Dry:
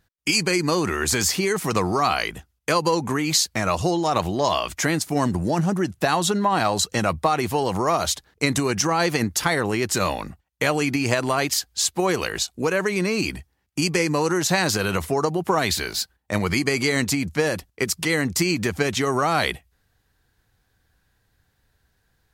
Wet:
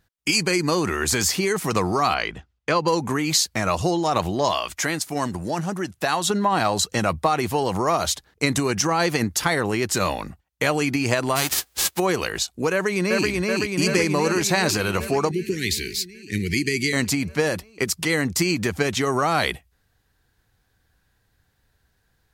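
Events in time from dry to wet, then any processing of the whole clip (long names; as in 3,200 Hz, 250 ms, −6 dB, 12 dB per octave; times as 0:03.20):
0:02.14–0:02.88: low-pass filter 4,200 Hz
0:04.51–0:06.30: low-shelf EQ 480 Hz −7 dB
0:11.35–0:11.98: spectral envelope flattened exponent 0.3
0:12.72–0:13.28: delay throw 380 ms, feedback 75%, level −1.5 dB
0:15.31–0:16.93: elliptic band-stop filter 390–1,900 Hz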